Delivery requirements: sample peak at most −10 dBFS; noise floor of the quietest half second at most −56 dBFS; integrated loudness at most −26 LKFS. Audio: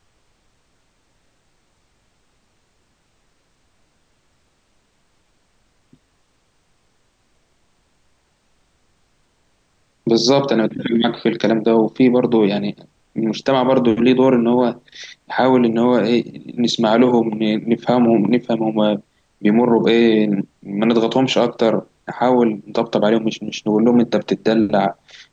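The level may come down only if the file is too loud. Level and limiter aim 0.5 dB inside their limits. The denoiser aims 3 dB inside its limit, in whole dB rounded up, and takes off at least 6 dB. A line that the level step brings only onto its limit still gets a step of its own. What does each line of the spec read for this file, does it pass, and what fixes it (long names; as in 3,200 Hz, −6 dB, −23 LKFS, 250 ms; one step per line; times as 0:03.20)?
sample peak −4.5 dBFS: out of spec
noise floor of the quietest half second −62 dBFS: in spec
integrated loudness −17.0 LKFS: out of spec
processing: level −9.5 dB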